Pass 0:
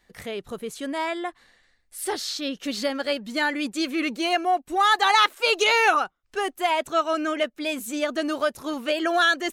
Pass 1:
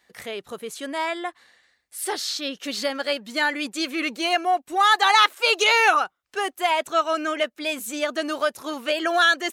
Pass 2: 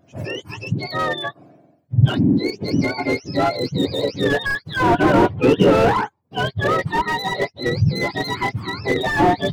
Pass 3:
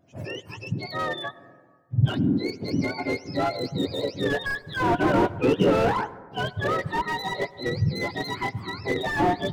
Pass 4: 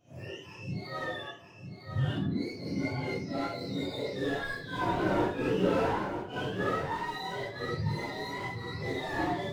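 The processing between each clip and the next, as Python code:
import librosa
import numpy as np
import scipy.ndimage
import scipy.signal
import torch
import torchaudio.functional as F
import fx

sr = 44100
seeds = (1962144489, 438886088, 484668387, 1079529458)

y1 = scipy.signal.sosfilt(scipy.signal.butter(2, 62.0, 'highpass', fs=sr, output='sos'), x)
y1 = fx.low_shelf(y1, sr, hz=290.0, db=-11.0)
y1 = F.gain(torch.from_numpy(y1), 2.5).numpy()
y2 = fx.octave_mirror(y1, sr, pivot_hz=1100.0)
y2 = fx.slew_limit(y2, sr, full_power_hz=83.0)
y2 = F.gain(torch.from_numpy(y2), 6.0).numpy()
y3 = fx.rev_plate(y2, sr, seeds[0], rt60_s=1.7, hf_ratio=0.25, predelay_ms=80, drr_db=18.5)
y3 = F.gain(torch.from_numpy(y3), -6.5).numpy()
y4 = fx.phase_scramble(y3, sr, seeds[1], window_ms=200)
y4 = y4 + 10.0 ** (-8.0 / 20.0) * np.pad(y4, (int(955 * sr / 1000.0), 0))[:len(y4)]
y4 = F.gain(torch.from_numpy(y4), -7.5).numpy()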